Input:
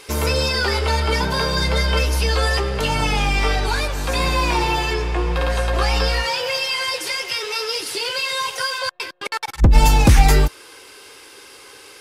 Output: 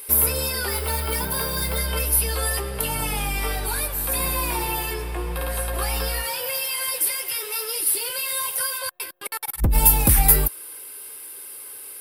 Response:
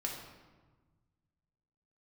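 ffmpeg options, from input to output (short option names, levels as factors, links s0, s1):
-filter_complex "[0:a]asettb=1/sr,asplit=3[s0][s1][s2];[s0]atrim=end=0.704[s3];[s1]atrim=start=0.7:end=1.78,asetpts=PTS-STARTPTS,afade=t=in:d=0.004:c=qsin,afade=t=out:st=1.076:d=0.004:c=qsin,acrusher=bits=9:mode=log:mix=0:aa=0.000001[s4];[s2]atrim=start=1.776[s5];[s3][s4]acrossfade=d=0.004:c1=hsin:c2=qsin[s6];[s6][s5]acrossfade=d=0.004:c1=qsin:c2=hsin,aexciter=amount=15.6:drive=6.8:freq=9500,volume=0.422"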